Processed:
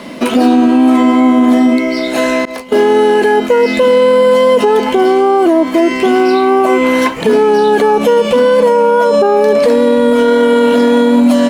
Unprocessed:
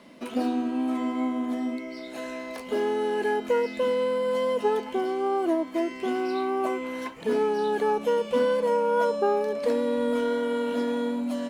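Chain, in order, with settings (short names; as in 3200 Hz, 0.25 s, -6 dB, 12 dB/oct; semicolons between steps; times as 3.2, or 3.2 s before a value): 2.45–3.67 expander -28 dBFS; maximiser +23.5 dB; gain -1 dB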